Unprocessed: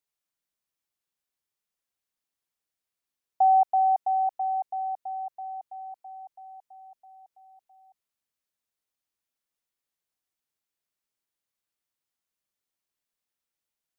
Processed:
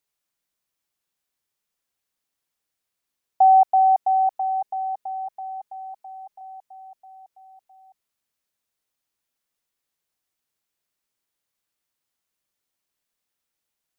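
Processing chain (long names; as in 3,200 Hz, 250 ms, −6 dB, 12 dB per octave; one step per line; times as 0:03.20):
0:04.35–0:06.41: comb filter 4.8 ms, depth 59%
level +5.5 dB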